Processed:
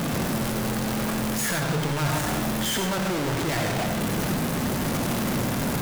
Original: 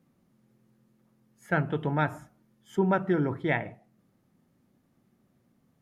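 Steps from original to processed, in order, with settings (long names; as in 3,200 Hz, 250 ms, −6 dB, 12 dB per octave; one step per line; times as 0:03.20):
sign of each sample alone
on a send: convolution reverb RT60 0.40 s, pre-delay 83 ms, DRR 5 dB
on the sum: level +6 dB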